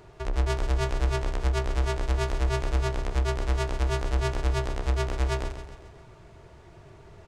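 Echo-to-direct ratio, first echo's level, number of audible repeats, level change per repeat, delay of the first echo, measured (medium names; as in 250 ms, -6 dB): -8.5 dB, -10.0 dB, 5, -5.5 dB, 134 ms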